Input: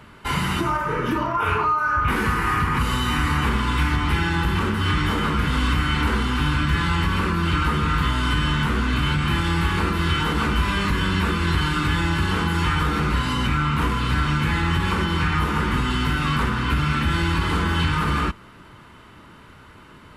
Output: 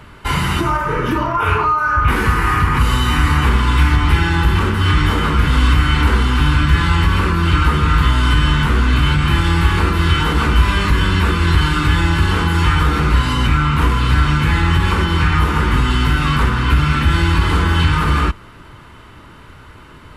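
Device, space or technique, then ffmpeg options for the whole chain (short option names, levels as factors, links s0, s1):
low shelf boost with a cut just above: -af "lowshelf=f=85:g=8,equalizer=f=200:t=o:w=0.51:g=-4.5,volume=1.78"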